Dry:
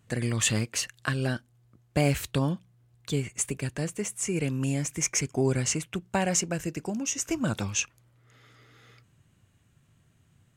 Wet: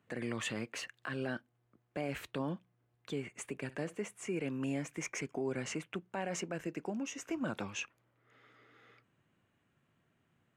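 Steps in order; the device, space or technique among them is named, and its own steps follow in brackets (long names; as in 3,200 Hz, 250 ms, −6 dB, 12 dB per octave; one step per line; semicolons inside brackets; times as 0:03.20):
DJ mixer with the lows and highs turned down (three-way crossover with the lows and the highs turned down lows −16 dB, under 200 Hz, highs −15 dB, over 3,000 Hz; brickwall limiter −24 dBFS, peak gain reduction 11 dB)
0:03.60–0:04.01: flutter between parallel walls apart 10.5 metres, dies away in 0.21 s
level −3.5 dB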